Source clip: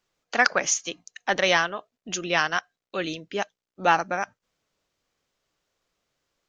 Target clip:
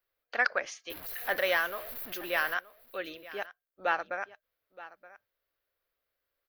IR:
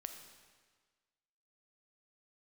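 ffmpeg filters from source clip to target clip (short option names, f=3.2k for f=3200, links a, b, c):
-filter_complex "[0:a]asettb=1/sr,asplit=3[a][b][c];[a]atrim=end=0.904[d];[b]atrim=start=0.9:end=2.54,asetpts=PTS-STARTPTS,afade=t=in:d=0.004:c=qsin,afade=t=out:st=1.636:d=0.004:c=qsin,aeval=exprs='val(0)+0.5*0.0299*sgn(val(0))':c=same[e];[c]atrim=start=2.536[f];[d][e]acrossfade=d=0.004:c1=hsin:c2=qsin[g];[g][f]acrossfade=d=0.004:c1=qsin:c2=hsin,firequalizer=gain_entry='entry(100,0);entry(150,-15);entry(260,-7);entry(540,3);entry(830,-3);entry(1600,4);entry(2900,-2);entry(4400,-2);entry(6800,-17);entry(12000,15)':delay=0.05:min_phase=1,aecho=1:1:923:0.126,volume=-9dB"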